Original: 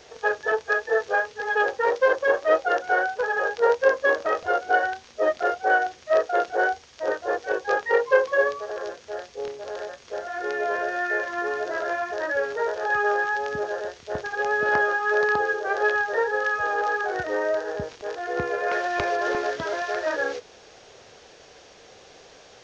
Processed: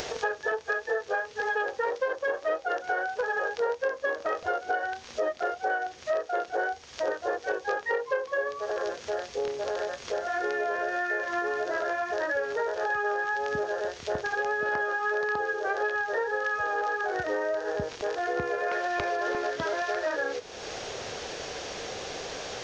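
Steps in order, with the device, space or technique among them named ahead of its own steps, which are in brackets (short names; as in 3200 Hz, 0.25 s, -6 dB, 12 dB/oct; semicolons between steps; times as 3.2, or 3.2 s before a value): upward and downward compression (upward compressor, threshold -32 dBFS; compressor 6:1, threshold -31 dBFS, peak gain reduction 17 dB); gain +4.5 dB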